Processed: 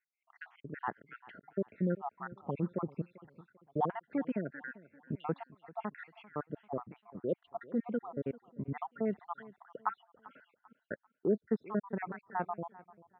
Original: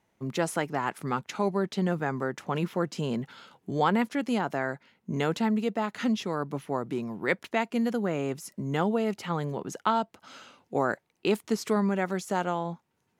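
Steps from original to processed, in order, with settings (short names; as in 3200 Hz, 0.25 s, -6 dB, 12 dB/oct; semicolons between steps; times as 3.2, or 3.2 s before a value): random spectral dropouts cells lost 70%; Bessel low-pass 1500 Hz, order 6; feedback echo 0.393 s, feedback 36%, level -20 dB; gain -3.5 dB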